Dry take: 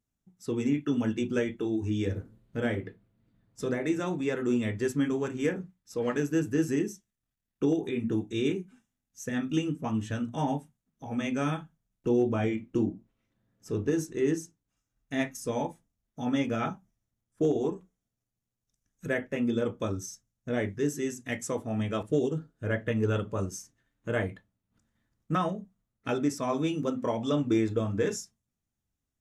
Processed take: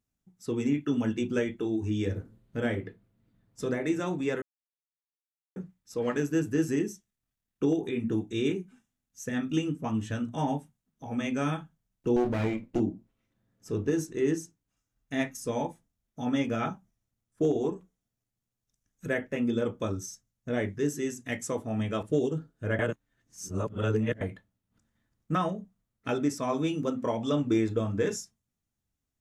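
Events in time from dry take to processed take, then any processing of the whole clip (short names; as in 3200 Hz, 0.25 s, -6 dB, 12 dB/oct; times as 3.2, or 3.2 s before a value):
4.42–5.56 mute
12.16–12.8 minimum comb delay 0.42 ms
22.79–24.21 reverse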